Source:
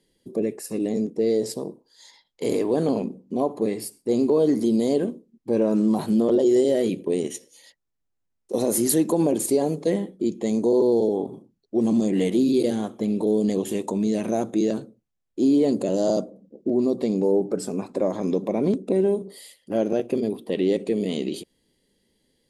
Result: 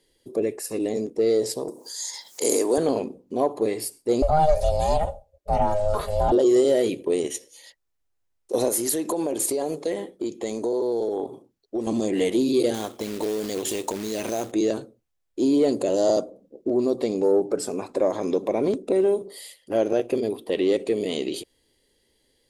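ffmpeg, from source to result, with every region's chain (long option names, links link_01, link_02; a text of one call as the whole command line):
ffmpeg -i in.wav -filter_complex "[0:a]asettb=1/sr,asplit=3[link_01][link_02][link_03];[link_01]atrim=end=1.684[link_04];[link_02]atrim=start=1.68:end=2.78,asetpts=PTS-STARTPTS,afade=type=in:duration=0.004:curve=qsin,afade=type=out:start_time=1.096:duration=0.004:curve=qsin,highpass=frequency=160:width=0.5412,highpass=frequency=160:width=1.3066,highshelf=frequency=4700:width_type=q:width=1.5:gain=12,acompressor=mode=upward:threshold=-27dB:ratio=2.5:attack=3.2:release=140:knee=2.83:detection=peak[link_05];[link_03]atrim=start=2.776[link_06];[link_04][link_05]acrossfade=duration=0.004:curve1=hsin:curve2=qsin[link_07];[link_07][link_06]acrossfade=duration=0.004:curve1=qsin:curve2=hsin,asettb=1/sr,asplit=3[link_08][link_09][link_10];[link_08]atrim=end=4.224[link_11];[link_09]atrim=start=4.22:end=6.32,asetpts=PTS-STARTPTS,afade=type=in:duration=0.004:curve=qsin,afade=type=out:start_time=2.096:duration=0.004:curve=qsin,aeval=exprs='val(0)*sin(2*PI*310*n/s)':channel_layout=same,aecho=1:1:4.9:0.73,atrim=end_sample=92610[link_12];[link_10]atrim=start=6.316[link_13];[link_11][link_12]acrossfade=duration=0.004:curve1=hsin:curve2=qsin[link_14];[link_14][link_13]acrossfade=duration=0.004:curve1=qsin:curve2=hsin,asettb=1/sr,asplit=3[link_15][link_16][link_17];[link_15]atrim=end=8.684[link_18];[link_16]atrim=start=8.68:end=11.87,asetpts=PTS-STARTPTS,afade=type=in:duration=0.004:curve=qsin,afade=type=out:start_time=3.186:duration=0.004:curve=qsin,lowshelf=frequency=150:gain=-7.5,acompressor=threshold=-22dB:ratio=6:attack=3.2:release=140:knee=1:detection=peak[link_19];[link_17]atrim=start=11.866[link_20];[link_18][link_19]acrossfade=duration=0.004:curve1=hsin:curve2=qsin[link_21];[link_21][link_20]acrossfade=duration=0.004:curve1=qsin:curve2=hsin,asettb=1/sr,asplit=3[link_22][link_23][link_24];[link_22]atrim=end=12.744[link_25];[link_23]atrim=start=12.74:end=14.52,asetpts=PTS-STARTPTS,afade=type=in:duration=0.004:curve=qsin,afade=type=out:start_time=1.776:duration=0.004:curve=qsin,equalizer=frequency=5000:width=0.8:gain=8,acompressor=threshold=-23dB:ratio=4:attack=3.2:release=140:knee=1:detection=peak,acrusher=bits=4:mode=log:mix=0:aa=0.000001[link_26];[link_24]atrim=start=14.516[link_27];[link_25][link_26]acrossfade=duration=0.004:curve1=hsin:curve2=qsin[link_28];[link_28][link_27]acrossfade=duration=0.004:curve1=qsin:curve2=hsin,equalizer=frequency=190:width_type=o:width=0.91:gain=-13,acontrast=81,volume=-3.5dB" out.wav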